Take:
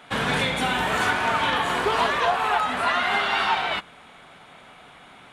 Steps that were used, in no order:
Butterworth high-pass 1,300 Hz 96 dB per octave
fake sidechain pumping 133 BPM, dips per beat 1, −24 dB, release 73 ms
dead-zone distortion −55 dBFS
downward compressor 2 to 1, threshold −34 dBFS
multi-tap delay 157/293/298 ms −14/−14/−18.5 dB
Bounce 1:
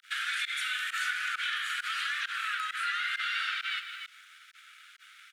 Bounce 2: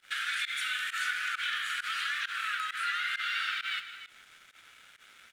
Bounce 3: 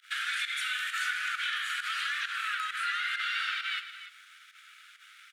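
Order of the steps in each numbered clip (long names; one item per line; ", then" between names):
multi-tap delay, then fake sidechain pumping, then dead-zone distortion, then Butterworth high-pass, then downward compressor
Butterworth high-pass, then downward compressor, then dead-zone distortion, then multi-tap delay, then fake sidechain pumping
dead-zone distortion, then Butterworth high-pass, then fake sidechain pumping, then downward compressor, then multi-tap delay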